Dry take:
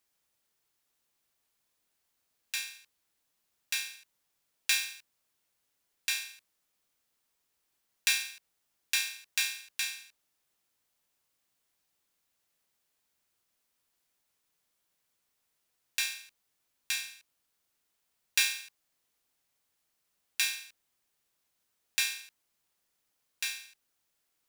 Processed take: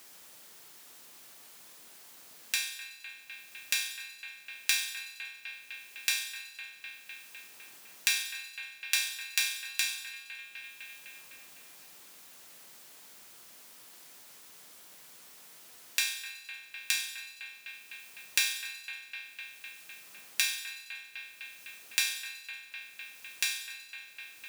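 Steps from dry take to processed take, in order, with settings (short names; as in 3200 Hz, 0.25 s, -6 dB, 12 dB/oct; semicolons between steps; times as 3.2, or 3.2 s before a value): split-band echo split 3000 Hz, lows 0.253 s, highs 93 ms, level -15 dB; three-band squash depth 70%; gain +4.5 dB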